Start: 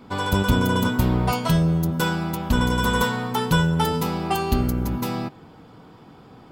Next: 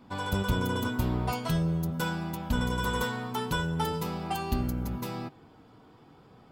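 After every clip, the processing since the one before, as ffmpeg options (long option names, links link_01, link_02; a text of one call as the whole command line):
ffmpeg -i in.wav -af "flanger=delay=1.1:depth=1.9:regen=-71:speed=0.44:shape=sinusoidal,volume=-4dB" out.wav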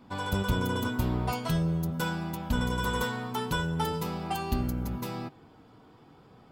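ffmpeg -i in.wav -af anull out.wav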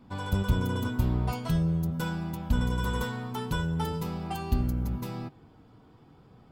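ffmpeg -i in.wav -af "lowshelf=frequency=190:gain=9.5,volume=-4dB" out.wav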